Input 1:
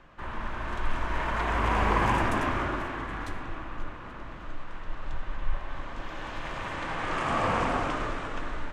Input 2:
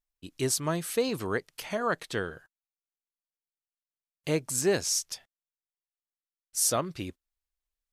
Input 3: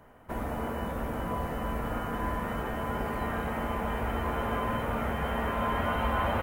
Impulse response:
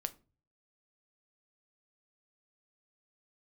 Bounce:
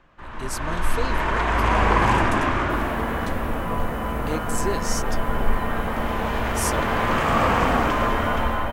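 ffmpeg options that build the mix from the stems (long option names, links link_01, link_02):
-filter_complex "[0:a]volume=-2.5dB[link_01];[1:a]volume=-11.5dB[link_02];[2:a]adelay=2400,volume=-3.5dB[link_03];[link_01][link_02][link_03]amix=inputs=3:normalize=0,dynaudnorm=framelen=140:gausssize=7:maxgain=9dB"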